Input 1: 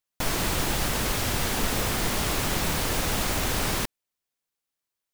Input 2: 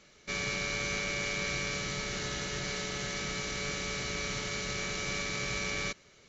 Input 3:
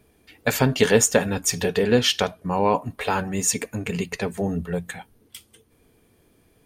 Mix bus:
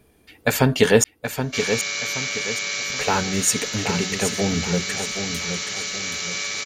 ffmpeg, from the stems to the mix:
ffmpeg -i stem1.wav -i stem2.wav -i stem3.wav -filter_complex "[1:a]highpass=frequency=550:poles=1,highshelf=frequency=2400:gain=10,adelay=1250,volume=2.5dB[link_01];[2:a]volume=2dB,asplit=3[link_02][link_03][link_04];[link_02]atrim=end=1.04,asetpts=PTS-STARTPTS,afade=type=out:start_time=1.036:duration=0.004:curve=hsin[link_05];[link_03]atrim=start=1.04:end=2.9,asetpts=PTS-STARTPTS,volume=0[link_06];[link_04]atrim=start=2.9,asetpts=PTS-STARTPTS,afade=type=in:duration=0.004:curve=hsin[link_07];[link_05][link_06][link_07]concat=n=3:v=0:a=1,asplit=2[link_08][link_09];[link_09]volume=-8dB,aecho=0:1:774|1548|2322|3096|3870:1|0.38|0.144|0.0549|0.0209[link_10];[link_01][link_08][link_10]amix=inputs=3:normalize=0" out.wav

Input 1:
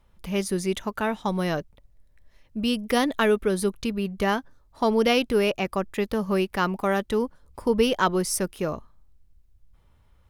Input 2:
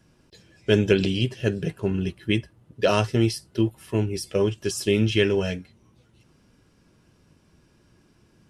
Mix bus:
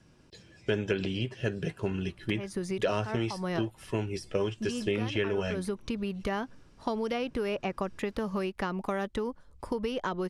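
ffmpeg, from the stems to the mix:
ffmpeg -i stem1.wav -i stem2.wav -filter_complex "[0:a]acompressor=threshold=-24dB:ratio=6,adelay=2050,volume=-1dB[link_01];[1:a]volume=-0.5dB,asplit=2[link_02][link_03];[link_03]apad=whole_len=544370[link_04];[link_01][link_04]sidechaincompress=threshold=-25dB:ratio=4:attack=16:release=218[link_05];[link_05][link_02]amix=inputs=2:normalize=0,lowpass=9100,acrossover=split=640|2100[link_06][link_07][link_08];[link_06]acompressor=threshold=-30dB:ratio=4[link_09];[link_07]acompressor=threshold=-33dB:ratio=4[link_10];[link_08]acompressor=threshold=-45dB:ratio=4[link_11];[link_09][link_10][link_11]amix=inputs=3:normalize=0" out.wav

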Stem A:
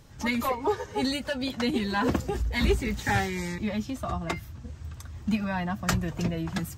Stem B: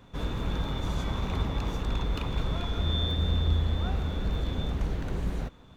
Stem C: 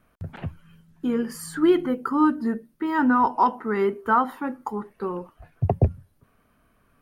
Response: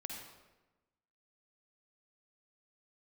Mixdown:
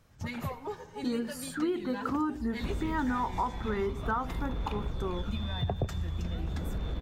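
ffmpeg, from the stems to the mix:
-filter_complex "[0:a]volume=-14dB,asplit=2[link_01][link_02];[link_02]volume=-6.5dB[link_03];[1:a]acompressor=threshold=-36dB:ratio=3,aphaser=in_gain=1:out_gain=1:delay=1.2:decay=0.41:speed=0.46:type=sinusoidal,adelay=2500,volume=-1dB[link_04];[2:a]volume=-5dB[link_05];[3:a]atrim=start_sample=2205[link_06];[link_03][link_06]afir=irnorm=-1:irlink=0[link_07];[link_01][link_04][link_05][link_07]amix=inputs=4:normalize=0,acompressor=threshold=-27dB:ratio=6"

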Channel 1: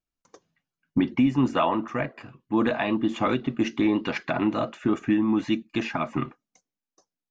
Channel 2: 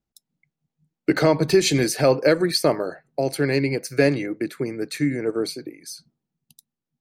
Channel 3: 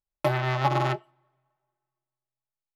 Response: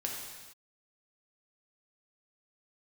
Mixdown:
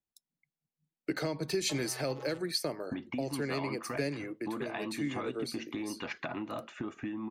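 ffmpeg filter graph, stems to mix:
-filter_complex "[0:a]equalizer=frequency=92:width=2.9:gain=6,acompressor=threshold=-29dB:ratio=5,adelay=1950,volume=-3.5dB[link_01];[1:a]volume=-10dB[link_02];[2:a]adelay=1450,volume=-19.5dB[link_03];[link_01][link_02][link_03]amix=inputs=3:normalize=0,lowshelf=frequency=270:gain=-6.5,acrossover=split=310|3000[link_04][link_05][link_06];[link_05]acompressor=threshold=-34dB:ratio=6[link_07];[link_04][link_07][link_06]amix=inputs=3:normalize=0"

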